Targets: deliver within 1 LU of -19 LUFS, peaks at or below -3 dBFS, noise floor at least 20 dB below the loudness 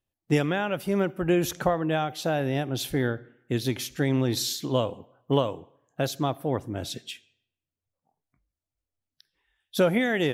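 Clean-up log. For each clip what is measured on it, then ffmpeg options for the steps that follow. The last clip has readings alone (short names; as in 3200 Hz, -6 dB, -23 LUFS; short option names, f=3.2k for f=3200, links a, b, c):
loudness -27.0 LUFS; peak -9.0 dBFS; loudness target -19.0 LUFS
-> -af "volume=8dB,alimiter=limit=-3dB:level=0:latency=1"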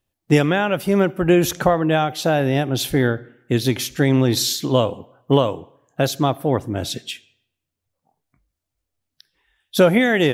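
loudness -19.5 LUFS; peak -3.0 dBFS; noise floor -81 dBFS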